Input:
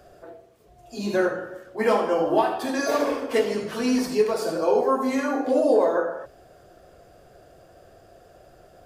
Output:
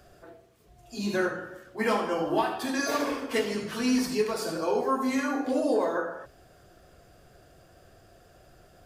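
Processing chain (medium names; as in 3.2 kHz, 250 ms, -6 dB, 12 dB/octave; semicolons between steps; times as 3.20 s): peaking EQ 560 Hz -8 dB 1.5 oct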